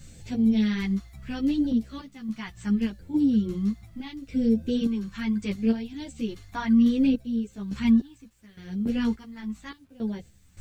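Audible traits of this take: phasing stages 2, 0.72 Hz, lowest notch 500–1100 Hz; random-step tremolo 3.5 Hz, depth 95%; a quantiser's noise floor 12-bit, dither none; a shimmering, thickened sound

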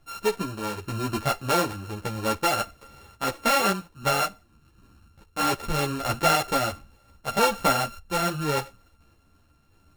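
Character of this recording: a buzz of ramps at a fixed pitch in blocks of 32 samples; random-step tremolo; a shimmering, thickened sound

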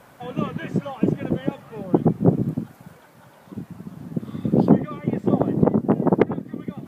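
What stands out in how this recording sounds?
noise floor -51 dBFS; spectral tilt -6.0 dB/oct

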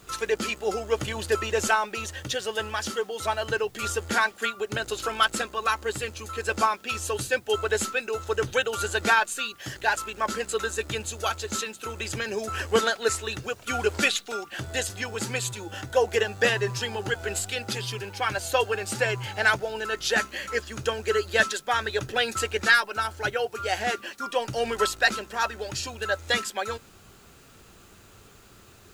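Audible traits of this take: a quantiser's noise floor 10-bit, dither triangular

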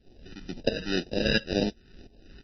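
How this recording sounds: tremolo saw up 2.9 Hz, depth 85%; aliases and images of a low sample rate 1100 Hz, jitter 0%; phasing stages 2, 2 Hz, lowest notch 650–1300 Hz; MP3

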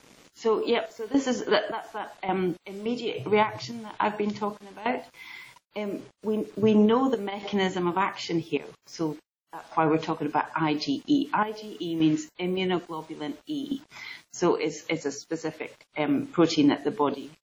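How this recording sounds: random-step tremolo, depth 90%; a quantiser's noise floor 10-bit, dither none; WMA

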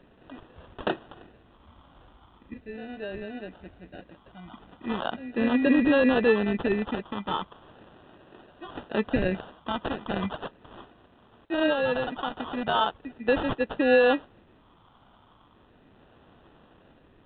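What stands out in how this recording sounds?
phasing stages 6, 0.38 Hz, lowest notch 430–2400 Hz; aliases and images of a low sample rate 2200 Hz, jitter 0%; A-law

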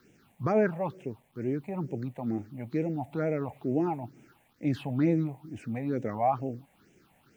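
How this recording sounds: a quantiser's noise floor 12-bit, dither none; phasing stages 6, 2.2 Hz, lowest notch 340–1200 Hz

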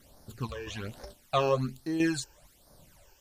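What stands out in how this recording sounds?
chopped level 1.5 Hz, depth 60%, duty 70%; a quantiser's noise floor 10-bit, dither triangular; phasing stages 12, 1.2 Hz, lowest notch 200–2800 Hz; Vorbis

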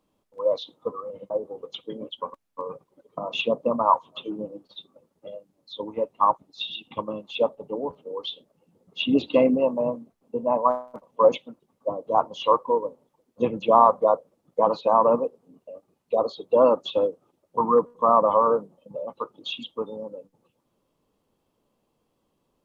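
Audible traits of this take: noise floor -74 dBFS; spectral tilt -3.0 dB/oct

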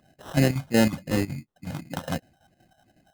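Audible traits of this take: phasing stages 4, 2.8 Hz, lowest notch 330–1500 Hz; aliases and images of a low sample rate 2300 Hz, jitter 0%; chopped level 5.4 Hz, depth 65%, duty 75%

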